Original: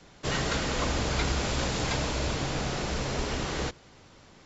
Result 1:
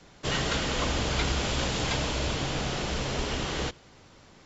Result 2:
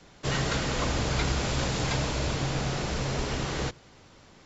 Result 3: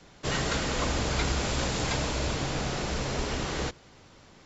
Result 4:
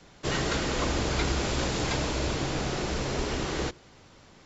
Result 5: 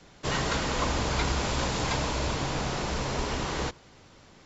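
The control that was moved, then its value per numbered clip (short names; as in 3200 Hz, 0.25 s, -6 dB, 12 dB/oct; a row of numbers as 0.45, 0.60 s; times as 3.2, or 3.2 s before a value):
dynamic EQ, frequency: 3100, 130, 8600, 350, 980 Hz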